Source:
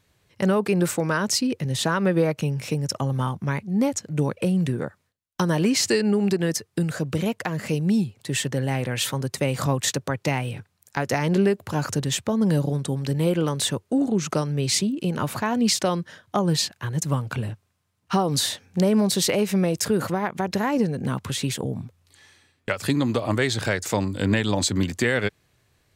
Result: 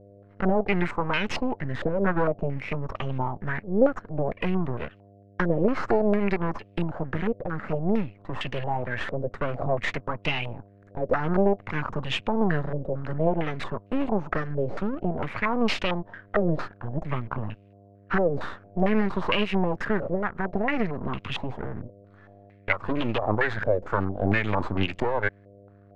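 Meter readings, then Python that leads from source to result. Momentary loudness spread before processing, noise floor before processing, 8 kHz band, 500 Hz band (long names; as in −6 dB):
7 LU, −70 dBFS, below −25 dB, −1.0 dB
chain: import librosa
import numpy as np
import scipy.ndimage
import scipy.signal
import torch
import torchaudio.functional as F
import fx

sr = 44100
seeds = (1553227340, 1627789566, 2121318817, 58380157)

y = np.maximum(x, 0.0)
y = fx.dmg_buzz(y, sr, base_hz=100.0, harmonics=7, level_db=-54.0, tilt_db=-5, odd_only=False)
y = fx.filter_held_lowpass(y, sr, hz=4.4, low_hz=550.0, high_hz=2700.0)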